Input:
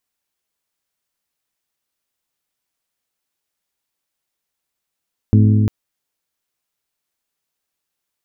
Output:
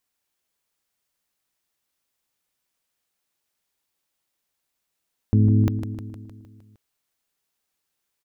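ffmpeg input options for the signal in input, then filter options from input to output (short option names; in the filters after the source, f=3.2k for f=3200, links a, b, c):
-f lavfi -i "aevalsrc='0.398*pow(10,-3*t/3.81)*sin(2*PI*106*t)+0.224*pow(10,-3*t/3.095)*sin(2*PI*212*t)+0.126*pow(10,-3*t/2.93)*sin(2*PI*254.4*t)+0.0708*pow(10,-3*t/2.74)*sin(2*PI*318*t)+0.0398*pow(10,-3*t/2.514)*sin(2*PI*424*t)':d=0.35:s=44100"
-af "alimiter=limit=-10.5dB:level=0:latency=1:release=128,aecho=1:1:154|308|462|616|770|924|1078:0.355|0.209|0.124|0.0729|0.043|0.0254|0.015"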